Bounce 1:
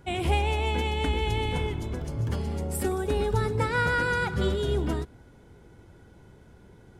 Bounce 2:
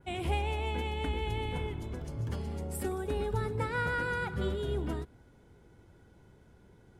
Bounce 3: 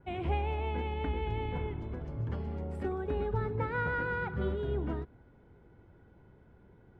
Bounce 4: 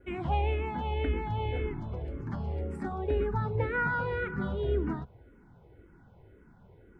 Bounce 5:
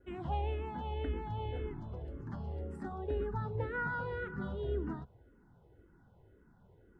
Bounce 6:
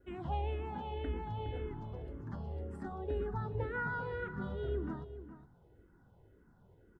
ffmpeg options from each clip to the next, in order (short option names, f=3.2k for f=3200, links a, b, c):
-af "adynamicequalizer=threshold=0.00224:dfrequency=5800:dqfactor=1.1:tfrequency=5800:tqfactor=1.1:attack=5:release=100:ratio=0.375:range=3.5:mode=cutabove:tftype=bell,volume=-6.5dB"
-af "lowpass=2.1k"
-filter_complex "[0:a]asplit=2[a][b];[b]afreqshift=-1.9[c];[a][c]amix=inputs=2:normalize=1,volume=5.5dB"
-af "equalizer=f=2.3k:w=7.8:g=-14.5,volume=-6.5dB"
-filter_complex "[0:a]asplit=2[a][b];[b]adelay=414,volume=-12dB,highshelf=f=4k:g=-9.32[c];[a][c]amix=inputs=2:normalize=0,volume=-1dB"